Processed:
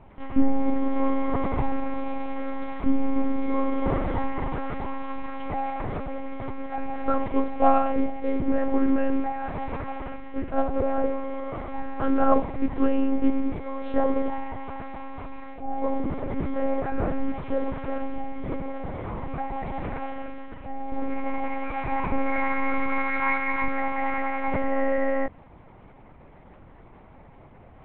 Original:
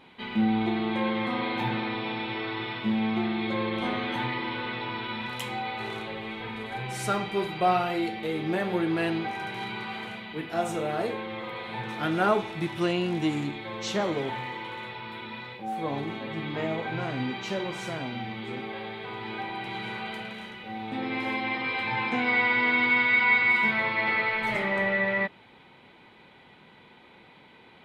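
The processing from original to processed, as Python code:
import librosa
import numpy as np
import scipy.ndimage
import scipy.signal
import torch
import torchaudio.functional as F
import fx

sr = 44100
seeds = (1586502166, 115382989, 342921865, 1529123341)

y = scipy.signal.sosfilt(scipy.signal.butter(2, 1100.0, 'lowpass', fs=sr, output='sos'), x)
y = fx.low_shelf(y, sr, hz=160.0, db=6.0)
y = fx.lpc_monotone(y, sr, seeds[0], pitch_hz=270.0, order=8)
y = y * 10.0 ** (6.0 / 20.0)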